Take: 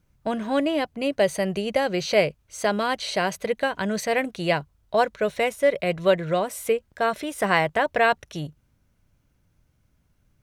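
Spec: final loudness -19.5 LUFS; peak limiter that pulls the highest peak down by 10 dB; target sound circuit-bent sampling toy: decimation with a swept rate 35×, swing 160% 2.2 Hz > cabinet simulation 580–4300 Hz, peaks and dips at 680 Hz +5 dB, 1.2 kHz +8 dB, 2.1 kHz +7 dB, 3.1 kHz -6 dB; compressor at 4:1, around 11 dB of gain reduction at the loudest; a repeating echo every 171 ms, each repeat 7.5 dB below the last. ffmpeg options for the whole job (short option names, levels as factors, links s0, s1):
-af "acompressor=threshold=0.0398:ratio=4,alimiter=level_in=1.26:limit=0.0631:level=0:latency=1,volume=0.794,aecho=1:1:171|342|513|684|855:0.422|0.177|0.0744|0.0312|0.0131,acrusher=samples=35:mix=1:aa=0.000001:lfo=1:lforange=56:lforate=2.2,highpass=580,equalizer=f=680:t=q:w=4:g=5,equalizer=f=1200:t=q:w=4:g=8,equalizer=f=2100:t=q:w=4:g=7,equalizer=f=3100:t=q:w=4:g=-6,lowpass=f=4300:w=0.5412,lowpass=f=4300:w=1.3066,volume=7.08"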